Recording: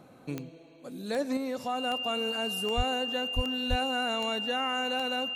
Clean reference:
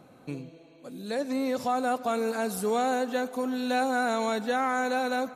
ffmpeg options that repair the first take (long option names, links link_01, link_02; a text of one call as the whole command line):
ffmpeg -i in.wav -filter_complex "[0:a]adeclick=threshold=4,bandreject=frequency=2800:width=30,asplit=3[link_01][link_02][link_03];[link_01]afade=type=out:start_time=2.76:duration=0.02[link_04];[link_02]highpass=frequency=140:width=0.5412,highpass=frequency=140:width=1.3066,afade=type=in:start_time=2.76:duration=0.02,afade=type=out:start_time=2.88:duration=0.02[link_05];[link_03]afade=type=in:start_time=2.88:duration=0.02[link_06];[link_04][link_05][link_06]amix=inputs=3:normalize=0,asplit=3[link_07][link_08][link_09];[link_07]afade=type=out:start_time=3.35:duration=0.02[link_10];[link_08]highpass=frequency=140:width=0.5412,highpass=frequency=140:width=1.3066,afade=type=in:start_time=3.35:duration=0.02,afade=type=out:start_time=3.47:duration=0.02[link_11];[link_09]afade=type=in:start_time=3.47:duration=0.02[link_12];[link_10][link_11][link_12]amix=inputs=3:normalize=0,asplit=3[link_13][link_14][link_15];[link_13]afade=type=out:start_time=3.69:duration=0.02[link_16];[link_14]highpass=frequency=140:width=0.5412,highpass=frequency=140:width=1.3066,afade=type=in:start_time=3.69:duration=0.02,afade=type=out:start_time=3.81:duration=0.02[link_17];[link_15]afade=type=in:start_time=3.81:duration=0.02[link_18];[link_16][link_17][link_18]amix=inputs=3:normalize=0,asetnsamples=nb_out_samples=441:pad=0,asendcmd='1.37 volume volume 5dB',volume=0dB" out.wav